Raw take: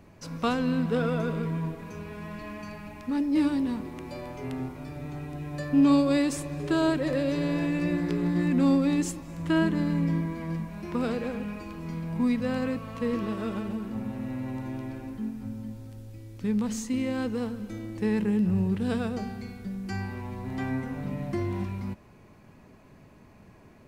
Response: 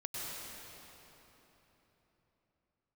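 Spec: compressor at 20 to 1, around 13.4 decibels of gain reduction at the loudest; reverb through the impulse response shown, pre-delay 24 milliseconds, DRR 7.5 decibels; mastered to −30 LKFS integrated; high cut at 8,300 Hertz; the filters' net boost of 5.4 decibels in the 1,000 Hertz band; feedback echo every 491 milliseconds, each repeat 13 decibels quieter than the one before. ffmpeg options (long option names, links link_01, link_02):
-filter_complex "[0:a]lowpass=8300,equalizer=frequency=1000:width_type=o:gain=6.5,acompressor=threshold=-29dB:ratio=20,aecho=1:1:491|982|1473:0.224|0.0493|0.0108,asplit=2[link_01][link_02];[1:a]atrim=start_sample=2205,adelay=24[link_03];[link_02][link_03]afir=irnorm=-1:irlink=0,volume=-9.5dB[link_04];[link_01][link_04]amix=inputs=2:normalize=0,volume=4dB"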